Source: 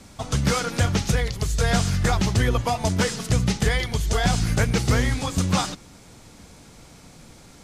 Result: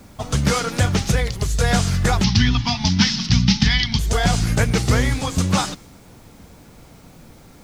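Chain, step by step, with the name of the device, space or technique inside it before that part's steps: plain cassette with noise reduction switched in (tape noise reduction on one side only decoder only; wow and flutter; white noise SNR 38 dB); 2.24–3.99 s: FFT filter 100 Hz 0 dB, 240 Hz +6 dB, 540 Hz -27 dB, 800 Hz -1 dB, 1.2 kHz -4 dB, 3.3 kHz +8 dB, 5.5 kHz +10 dB, 8.2 kHz -21 dB; trim +3 dB

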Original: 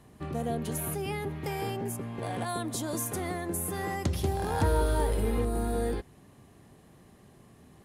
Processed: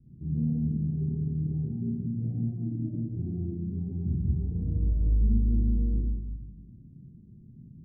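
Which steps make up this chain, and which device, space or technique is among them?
club heard from the street (peak limiter -25 dBFS, peak gain reduction 8 dB; low-pass 230 Hz 24 dB/octave; reverberation RT60 0.95 s, pre-delay 15 ms, DRR -7 dB)

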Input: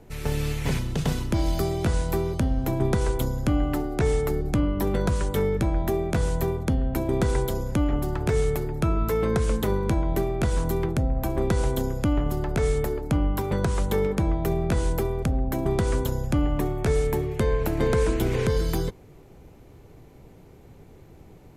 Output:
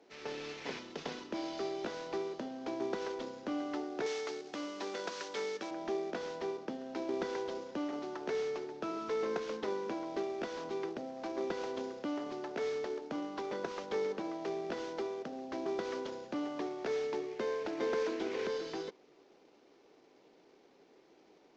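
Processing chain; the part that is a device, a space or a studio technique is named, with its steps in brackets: early wireless headset (high-pass 280 Hz 24 dB/octave; CVSD coder 32 kbps); 4.06–5.71 s: tilt EQ +3 dB/octave; trim -8.5 dB

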